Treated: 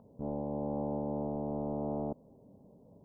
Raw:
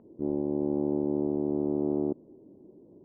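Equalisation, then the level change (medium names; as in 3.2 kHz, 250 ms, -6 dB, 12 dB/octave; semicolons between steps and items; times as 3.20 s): dynamic bell 120 Hz, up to -4 dB, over -41 dBFS, Q 0.73; static phaser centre 830 Hz, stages 4; +4.5 dB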